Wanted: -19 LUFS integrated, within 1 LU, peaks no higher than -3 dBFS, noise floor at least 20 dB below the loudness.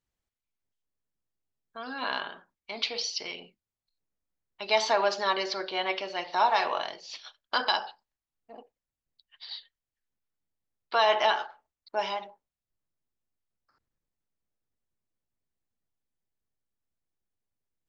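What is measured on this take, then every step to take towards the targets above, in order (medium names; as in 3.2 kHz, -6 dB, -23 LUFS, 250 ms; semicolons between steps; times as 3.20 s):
loudness -28.5 LUFS; peak level -11.0 dBFS; loudness target -19.0 LUFS
-> trim +9.5 dB; peak limiter -3 dBFS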